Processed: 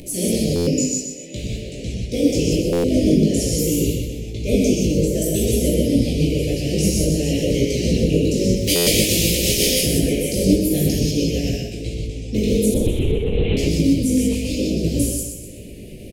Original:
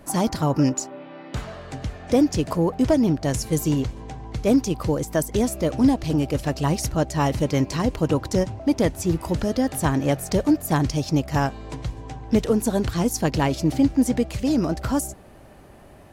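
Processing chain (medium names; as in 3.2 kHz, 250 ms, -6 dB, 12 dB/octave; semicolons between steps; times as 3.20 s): 8.56–9.67 s: spectral contrast reduction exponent 0.43; elliptic band-stop 510–2400 Hz, stop band 60 dB; gated-style reverb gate 220 ms flat, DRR -8 dB; 14.32–14.81 s: dynamic bell 210 Hz, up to -8 dB, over -27 dBFS, Q 0.71; harmonic-percussive split harmonic -11 dB; upward compressor, threshold -31 dBFS; chorus 0.52 Hz, delay 17 ms, depth 2.8 ms; 12.74–13.57 s: LPC vocoder at 8 kHz whisper; feedback delay 125 ms, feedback 43%, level -7 dB; buffer glitch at 0.55/2.72/8.75 s, samples 512, times 9; trim +5.5 dB; Vorbis 192 kbps 48 kHz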